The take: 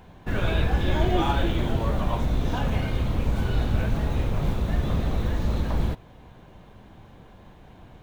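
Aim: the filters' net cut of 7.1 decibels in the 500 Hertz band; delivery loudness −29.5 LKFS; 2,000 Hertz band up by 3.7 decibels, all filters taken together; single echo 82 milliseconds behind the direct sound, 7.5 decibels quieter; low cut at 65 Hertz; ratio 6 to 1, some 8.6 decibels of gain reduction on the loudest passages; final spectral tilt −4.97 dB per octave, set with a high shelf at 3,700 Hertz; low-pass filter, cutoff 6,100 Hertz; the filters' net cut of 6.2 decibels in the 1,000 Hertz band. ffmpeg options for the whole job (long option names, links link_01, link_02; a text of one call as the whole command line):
ffmpeg -i in.wav -af "highpass=65,lowpass=6100,equalizer=frequency=500:width_type=o:gain=-8.5,equalizer=frequency=1000:width_type=o:gain=-7,equalizer=frequency=2000:width_type=o:gain=7,highshelf=frequency=3700:gain=3.5,acompressor=threshold=-31dB:ratio=6,aecho=1:1:82:0.422,volume=5dB" out.wav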